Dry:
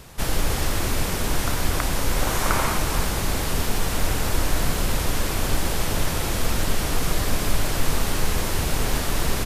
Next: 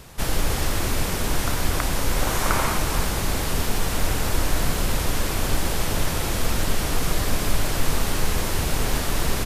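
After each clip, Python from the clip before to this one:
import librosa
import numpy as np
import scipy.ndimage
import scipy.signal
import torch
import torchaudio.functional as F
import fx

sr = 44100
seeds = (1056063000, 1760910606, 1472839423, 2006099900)

y = x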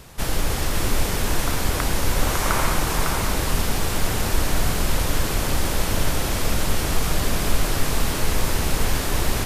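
y = x + 10.0 ** (-5.0 / 20.0) * np.pad(x, (int(553 * sr / 1000.0), 0))[:len(x)]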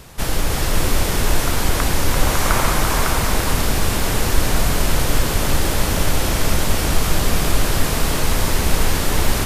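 y = x + 10.0 ** (-6.0 / 20.0) * np.pad(x, (int(341 * sr / 1000.0), 0))[:len(x)]
y = y * 10.0 ** (3.0 / 20.0)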